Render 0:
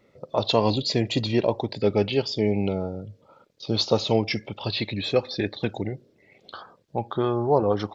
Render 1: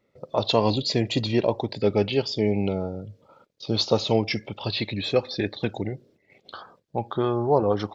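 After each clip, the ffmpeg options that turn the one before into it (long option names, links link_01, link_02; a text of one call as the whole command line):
ffmpeg -i in.wav -af "agate=range=-9dB:threshold=-56dB:ratio=16:detection=peak" out.wav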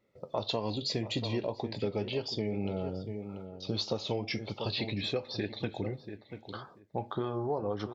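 ffmpeg -i in.wav -filter_complex "[0:a]asplit=2[link_01][link_02];[link_02]adelay=686,lowpass=frequency=1600:poles=1,volume=-13dB,asplit=2[link_03][link_04];[link_04]adelay=686,lowpass=frequency=1600:poles=1,volume=0.17[link_05];[link_01][link_03][link_05]amix=inputs=3:normalize=0,flanger=delay=8.9:depth=2.4:regen=-68:speed=1.8:shape=triangular,acompressor=threshold=-29dB:ratio=6" out.wav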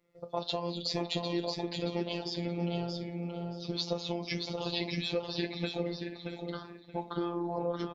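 ffmpeg -i in.wav -af "flanger=delay=4.4:depth=4.1:regen=-79:speed=1.8:shape=sinusoidal,aecho=1:1:627|1254|1881:0.562|0.112|0.0225,afftfilt=real='hypot(re,im)*cos(PI*b)':imag='0':win_size=1024:overlap=0.75,volume=7dB" out.wav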